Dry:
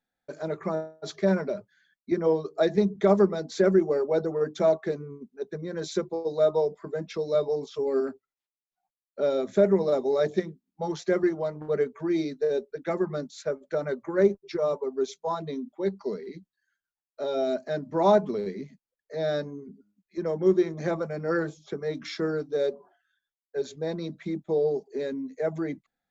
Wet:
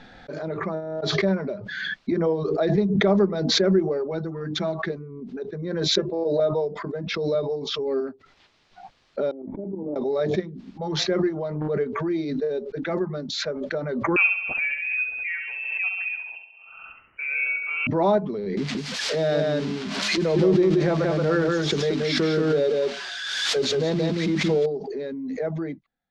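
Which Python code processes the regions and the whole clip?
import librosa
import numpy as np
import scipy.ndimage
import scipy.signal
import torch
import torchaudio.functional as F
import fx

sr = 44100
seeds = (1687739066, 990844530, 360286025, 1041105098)

y = fx.chain(x, sr, fx.peak_eq(hz=530.0, db=-11.5, octaves=0.97),
    fx.comb(ms=6.0, depth=0.49), at=(4.11, 4.9))
y = fx.chain(y, sr, fx.notch_comb(f0_hz=370.0),
    fx.small_body(hz=(390.0, 600.0, 1700.0, 2700.0), ring_ms=65, db=16), at=(5.97, 6.4))
y = fx.chain(y, sr, fx.resample_bad(factor=6, down='none', up='zero_stuff'),
    fx.level_steps(step_db=10),
    fx.formant_cascade(vowel='u'), at=(9.31, 9.96))
y = fx.chain(y, sr, fx.room_flutter(wall_m=11.6, rt60_s=0.72),
    fx.freq_invert(carrier_hz=2900), at=(14.16, 17.87))
y = fx.chain(y, sr, fx.crossing_spikes(level_db=-27.0),
    fx.echo_single(ms=178, db=-3.0),
    fx.env_flatten(amount_pct=50), at=(18.57, 24.66))
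y = scipy.signal.sosfilt(scipy.signal.butter(4, 4700.0, 'lowpass', fs=sr, output='sos'), y)
y = fx.low_shelf(y, sr, hz=200.0, db=5.0)
y = fx.pre_swell(y, sr, db_per_s=31.0)
y = F.gain(torch.from_numpy(y), -1.5).numpy()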